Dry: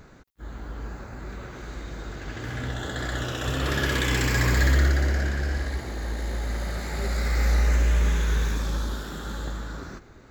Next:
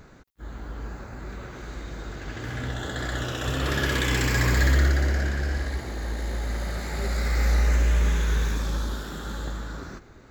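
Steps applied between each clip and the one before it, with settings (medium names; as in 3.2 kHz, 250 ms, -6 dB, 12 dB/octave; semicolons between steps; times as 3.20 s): no audible change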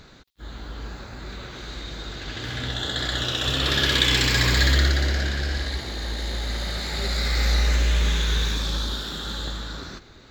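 peaking EQ 3.8 kHz +14.5 dB 1 oct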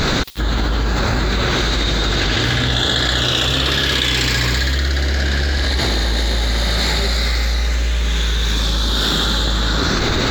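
level flattener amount 100%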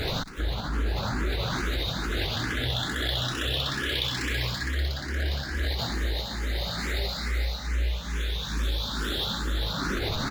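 median filter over 5 samples; delay 258 ms -14.5 dB; barber-pole phaser +2.3 Hz; trim -8.5 dB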